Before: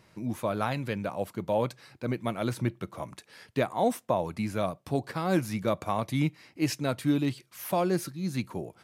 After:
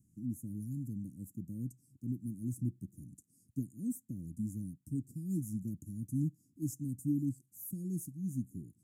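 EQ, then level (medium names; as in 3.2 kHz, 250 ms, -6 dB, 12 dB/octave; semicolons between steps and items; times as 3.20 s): Chebyshev band-stop 280–4600 Hz, order 4; Chebyshev band-stop 700–6900 Hz, order 4; -4.5 dB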